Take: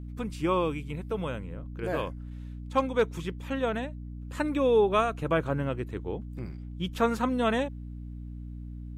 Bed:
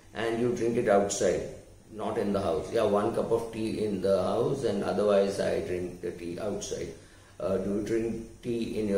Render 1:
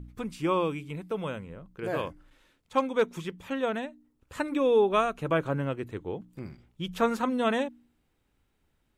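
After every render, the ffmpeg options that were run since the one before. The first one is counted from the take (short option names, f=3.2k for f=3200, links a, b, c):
-af "bandreject=f=60:t=h:w=4,bandreject=f=120:t=h:w=4,bandreject=f=180:t=h:w=4,bandreject=f=240:t=h:w=4,bandreject=f=300:t=h:w=4"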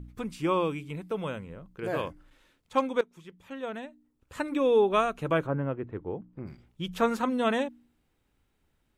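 -filter_complex "[0:a]asplit=3[a][b][c];[a]afade=t=out:st=5.45:d=0.02[d];[b]lowpass=1.5k,afade=t=in:st=5.45:d=0.02,afade=t=out:st=6.46:d=0.02[e];[c]afade=t=in:st=6.46:d=0.02[f];[d][e][f]amix=inputs=3:normalize=0,asplit=2[g][h];[g]atrim=end=3.01,asetpts=PTS-STARTPTS,afade=t=out:st=3.006:d=0.004:c=hsin:silence=0.1[i];[h]atrim=start=3.01,asetpts=PTS-STARTPTS,afade=t=in:d=1.64:silence=0.1[j];[i][j]concat=n=2:v=0:a=1"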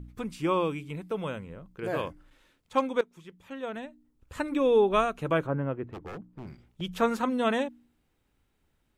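-filter_complex "[0:a]asettb=1/sr,asplit=3[a][b][c];[a]atrim=end=3.764[d];[b]atrim=start=3.76:end=5.05,asetpts=PTS-STARTPTS,afade=t=in:d=0.004:c=qsin,afade=t=out:st=1.286:d=0.004:c=qsin,lowshelf=f=82:g=11[e];[c]atrim=start=5.046[f];[d][e]acrossfade=d=0.004:c1=hsin:c2=qsin[g];[g][f]acrossfade=d=0.004:c1=qsin:c2=hsin,asettb=1/sr,asplit=3[h][i][j];[h]atrim=end=5.844[k];[i]atrim=start=5.84:end=6.81,asetpts=PTS-STARTPTS,afade=t=in:d=0.004:c=qsin,afade=t=out:st=0.966:d=0.004:c=qsin,aeval=exprs='0.02*(abs(mod(val(0)/0.02+3,4)-2)-1)':c=same[l];[j]atrim=start=6.806[m];[k][l]acrossfade=d=0.004:c1=hsin:c2=qsin[n];[n][m]acrossfade=d=0.004:c1=qsin:c2=hsin"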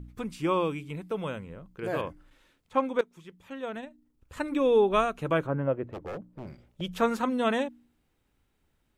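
-filter_complex "[0:a]asettb=1/sr,asplit=3[a][b][c];[a]atrim=end=2.014[d];[b]atrim=start=2.01:end=2.99,asetpts=PTS-STARTPTS,afade=t=in:d=0.004:c=qsin,afade=t=out:st=0.976:d=0.004:c=qsin,acrossover=split=2700[e][f];[f]acompressor=threshold=-58dB:ratio=4:attack=1:release=60[g];[e][g]amix=inputs=2:normalize=0[h];[c]atrim=start=2.986[i];[d][h]acrossfade=d=0.004:c1=hsin:c2=qsin[j];[j][i]acrossfade=d=0.004:c1=qsin:c2=hsin,asettb=1/sr,asplit=3[k][l][m];[k]atrim=end=3.804[n];[l]atrim=start=3.8:end=4.43,asetpts=PTS-STARTPTS,afade=t=in:d=0.004:c=qsin,afade=t=out:st=0.626:d=0.004:c=qsin,tremolo=f=26:d=0.333[o];[m]atrim=start=4.426[p];[n][o]acrossfade=d=0.004:c1=hsin:c2=qsin[q];[q][p]acrossfade=d=0.004:c1=qsin:c2=hsin,asettb=1/sr,asplit=3[r][s][t];[r]atrim=end=5.674[u];[s]atrim=start=5.67:end=6.93,asetpts=PTS-STARTPTS,afade=t=in:d=0.004:c=qsin,afade=t=out:st=1.256:d=0.004:c=qsin,equalizer=f=570:w=3.3:g=10.5[v];[t]atrim=start=6.926[w];[u][v]acrossfade=d=0.004:c1=hsin:c2=qsin[x];[x][w]acrossfade=d=0.004:c1=qsin:c2=hsin"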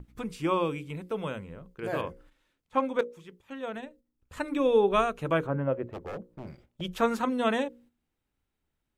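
-af "bandreject=f=60:t=h:w=6,bandreject=f=120:t=h:w=6,bandreject=f=180:t=h:w=6,bandreject=f=240:t=h:w=6,bandreject=f=300:t=h:w=6,bandreject=f=360:t=h:w=6,bandreject=f=420:t=h:w=6,bandreject=f=480:t=h:w=6,bandreject=f=540:t=h:w=6,agate=range=-9dB:threshold=-55dB:ratio=16:detection=peak"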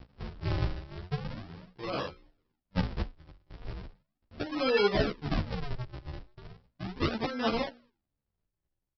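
-filter_complex "[0:a]aresample=11025,acrusher=samples=27:mix=1:aa=0.000001:lfo=1:lforange=43.2:lforate=0.37,aresample=44100,asplit=2[a][b];[b]adelay=11.9,afreqshift=1[c];[a][c]amix=inputs=2:normalize=1"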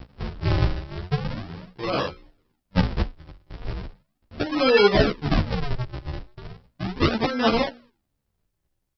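-af "volume=9dB"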